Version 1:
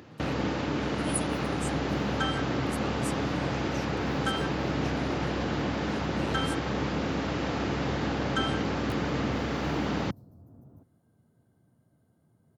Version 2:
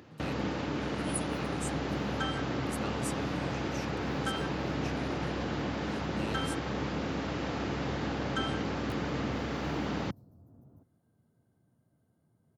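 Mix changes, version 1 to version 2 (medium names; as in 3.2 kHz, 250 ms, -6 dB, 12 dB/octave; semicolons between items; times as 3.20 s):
first sound -4.0 dB; second sound -4.5 dB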